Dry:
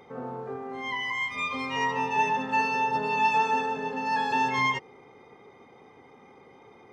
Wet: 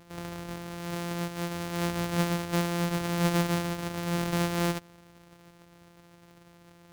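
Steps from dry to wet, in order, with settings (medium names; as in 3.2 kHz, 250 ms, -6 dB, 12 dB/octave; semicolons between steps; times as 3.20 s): sorted samples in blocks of 256 samples; trim -2.5 dB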